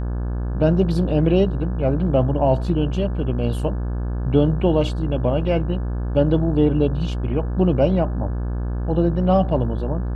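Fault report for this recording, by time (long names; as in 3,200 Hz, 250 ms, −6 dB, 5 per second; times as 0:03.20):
mains buzz 60 Hz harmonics 29 −24 dBFS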